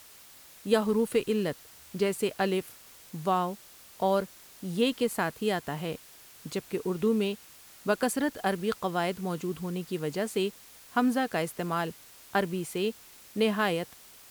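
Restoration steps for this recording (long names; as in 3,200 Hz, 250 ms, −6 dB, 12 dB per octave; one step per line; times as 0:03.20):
broadband denoise 21 dB, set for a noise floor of −52 dBFS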